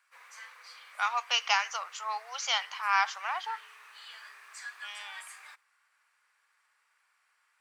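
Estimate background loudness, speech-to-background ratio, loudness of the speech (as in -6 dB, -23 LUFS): -47.5 LUFS, 17.0 dB, -30.5 LUFS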